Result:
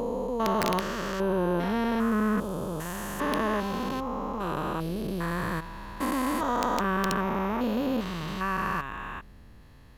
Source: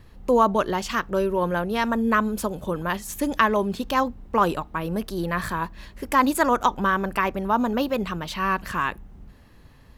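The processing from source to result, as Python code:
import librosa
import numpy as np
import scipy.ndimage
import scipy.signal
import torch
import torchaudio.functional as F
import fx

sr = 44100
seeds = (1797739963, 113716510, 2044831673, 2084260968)

y = fx.spec_steps(x, sr, hold_ms=400)
y = (np.mod(10.0 ** (15.5 / 20.0) * y + 1.0, 2.0) - 1.0) / 10.0 ** (15.5 / 20.0)
y = fx.end_taper(y, sr, db_per_s=280.0)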